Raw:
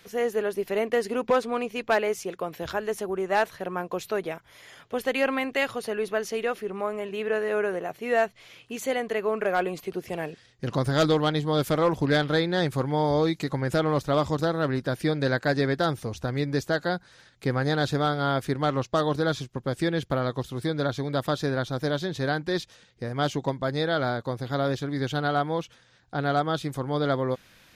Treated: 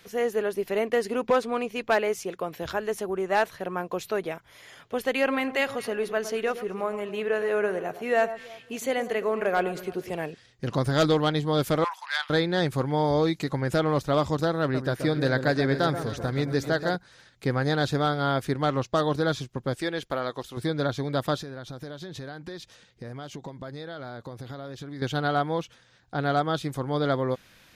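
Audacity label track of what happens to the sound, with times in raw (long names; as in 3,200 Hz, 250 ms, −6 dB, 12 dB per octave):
5.120000	10.120000	delay that swaps between a low-pass and a high-pass 110 ms, split 1,400 Hz, feedback 54%, level −11.5 dB
11.840000	12.300000	elliptic high-pass filter 890 Hz, stop band 60 dB
14.610000	16.960000	delay that swaps between a low-pass and a high-pass 131 ms, split 1,400 Hz, feedback 68%, level −8.5 dB
19.750000	20.570000	parametric band 110 Hz −13 dB 2.4 octaves
21.390000	25.020000	downward compressor 8 to 1, threshold −34 dBFS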